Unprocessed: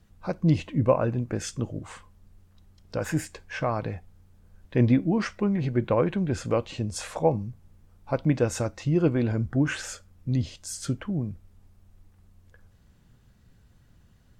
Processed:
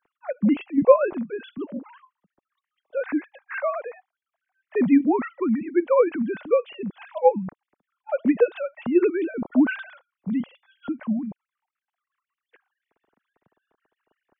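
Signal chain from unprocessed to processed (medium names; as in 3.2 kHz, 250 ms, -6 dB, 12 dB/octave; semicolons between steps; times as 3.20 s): formants replaced by sine waves; tape noise reduction on one side only decoder only; trim +3 dB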